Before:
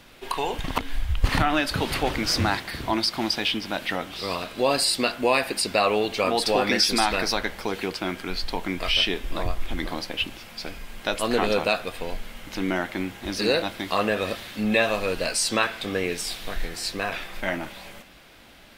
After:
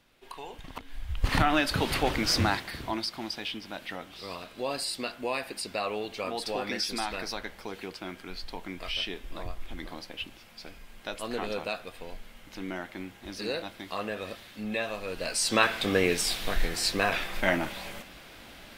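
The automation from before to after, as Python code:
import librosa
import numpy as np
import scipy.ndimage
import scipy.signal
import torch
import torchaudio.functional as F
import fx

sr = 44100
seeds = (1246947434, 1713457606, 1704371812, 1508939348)

y = fx.gain(x, sr, db=fx.line((0.86, -15.0), (1.39, -2.0), (2.41, -2.0), (3.21, -10.5), (15.04, -10.5), (15.72, 2.0)))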